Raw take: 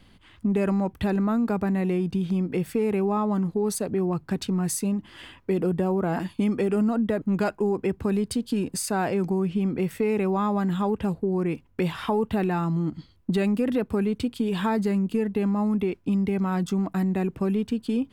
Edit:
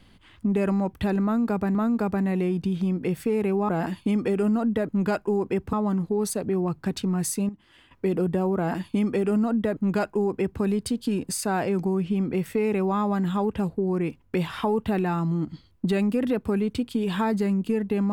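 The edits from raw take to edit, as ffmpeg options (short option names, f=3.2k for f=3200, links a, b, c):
-filter_complex "[0:a]asplit=6[a][b][c][d][e][f];[a]atrim=end=1.752[g];[b]atrim=start=1.238:end=3.182[h];[c]atrim=start=6.018:end=8.062[i];[d]atrim=start=3.178:end=4.942[j];[e]atrim=start=4.938:end=5.362,asetpts=PTS-STARTPTS,volume=-11.5dB[k];[f]atrim=start=5.358[l];[g][h]acrossfade=d=0.004:c1=hsin:c2=hsin[m];[m][i]acrossfade=d=0.004:c1=hsin:c2=hsin[n];[n][j]acrossfade=d=0.004:c1=hsin:c2=hsin[o];[o][k]acrossfade=d=0.004:c1=hsin:c2=hsin[p];[p][l]acrossfade=d=0.004:c1=hsin:c2=hsin"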